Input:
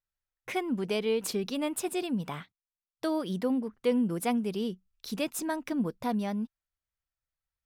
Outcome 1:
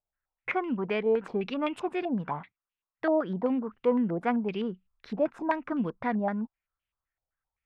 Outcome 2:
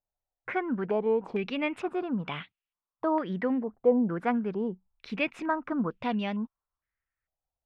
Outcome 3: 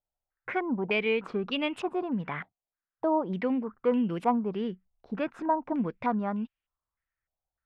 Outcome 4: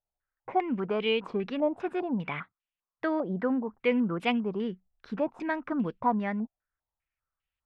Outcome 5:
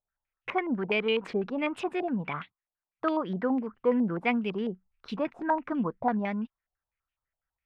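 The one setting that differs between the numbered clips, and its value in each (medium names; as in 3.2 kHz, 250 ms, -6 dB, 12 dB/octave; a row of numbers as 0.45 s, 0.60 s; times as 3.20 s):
step-sequenced low-pass, rate: 7.8 Hz, 2.2 Hz, 3.3 Hz, 5 Hz, 12 Hz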